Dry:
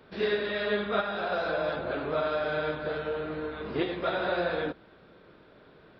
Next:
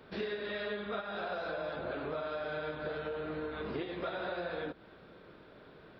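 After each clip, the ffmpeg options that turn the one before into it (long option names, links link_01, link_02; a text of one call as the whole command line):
ffmpeg -i in.wav -af "acompressor=threshold=-35dB:ratio=6" out.wav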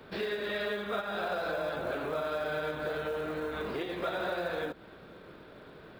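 ffmpeg -i in.wav -filter_complex "[0:a]acrossover=split=370[link_01][link_02];[link_01]alimiter=level_in=18dB:limit=-24dB:level=0:latency=1,volume=-18dB[link_03];[link_03][link_02]amix=inputs=2:normalize=0,acrusher=bits=7:mode=log:mix=0:aa=0.000001,volume=4.5dB" out.wav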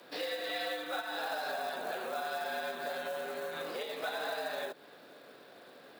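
ffmpeg -i in.wav -af "afreqshift=97,bass=frequency=250:gain=-7,treble=frequency=4000:gain=12,volume=-3.5dB" out.wav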